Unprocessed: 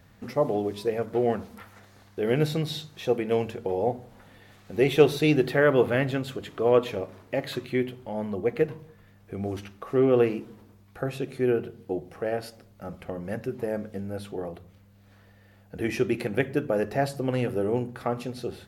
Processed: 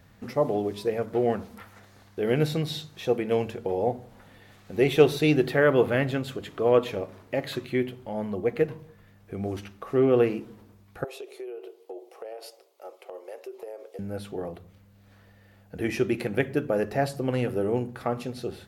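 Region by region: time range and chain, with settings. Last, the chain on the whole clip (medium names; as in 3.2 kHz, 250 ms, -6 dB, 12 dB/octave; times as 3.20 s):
11.04–13.99 s: elliptic high-pass 380 Hz, stop band 50 dB + peaking EQ 1.6 kHz -11.5 dB 0.64 oct + compression 16:1, threshold -34 dBFS
whole clip: none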